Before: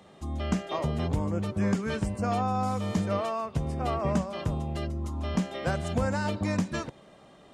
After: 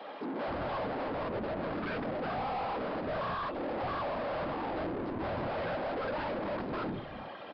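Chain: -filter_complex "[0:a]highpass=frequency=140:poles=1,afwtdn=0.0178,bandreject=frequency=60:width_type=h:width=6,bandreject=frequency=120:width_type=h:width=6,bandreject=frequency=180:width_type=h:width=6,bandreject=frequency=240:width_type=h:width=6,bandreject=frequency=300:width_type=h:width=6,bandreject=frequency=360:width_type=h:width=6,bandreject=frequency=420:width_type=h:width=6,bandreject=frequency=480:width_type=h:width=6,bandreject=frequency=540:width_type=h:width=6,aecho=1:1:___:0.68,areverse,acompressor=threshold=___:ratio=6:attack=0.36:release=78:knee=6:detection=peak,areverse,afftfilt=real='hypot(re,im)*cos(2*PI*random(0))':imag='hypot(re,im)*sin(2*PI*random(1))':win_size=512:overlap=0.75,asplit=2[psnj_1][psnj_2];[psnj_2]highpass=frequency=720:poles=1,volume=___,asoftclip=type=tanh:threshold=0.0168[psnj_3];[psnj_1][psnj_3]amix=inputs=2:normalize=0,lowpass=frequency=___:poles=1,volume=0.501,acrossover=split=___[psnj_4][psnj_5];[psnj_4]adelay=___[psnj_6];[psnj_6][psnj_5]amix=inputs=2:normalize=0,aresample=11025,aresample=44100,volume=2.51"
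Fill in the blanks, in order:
3.7, 0.0112, 63.1, 1500, 190, 270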